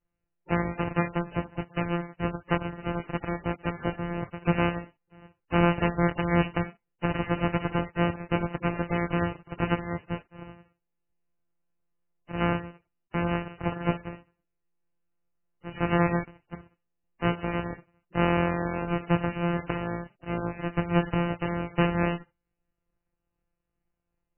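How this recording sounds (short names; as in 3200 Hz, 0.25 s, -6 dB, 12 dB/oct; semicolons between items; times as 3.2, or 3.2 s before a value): a buzz of ramps at a fixed pitch in blocks of 256 samples; MP3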